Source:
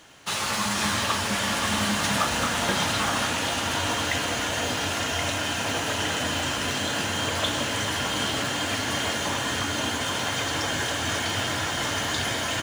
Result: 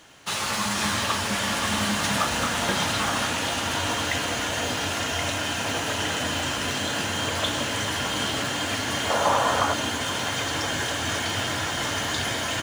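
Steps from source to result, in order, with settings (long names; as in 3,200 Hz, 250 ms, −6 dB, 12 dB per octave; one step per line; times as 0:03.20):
0:09.10–0:09.74: flat-topped bell 800 Hz +10.5 dB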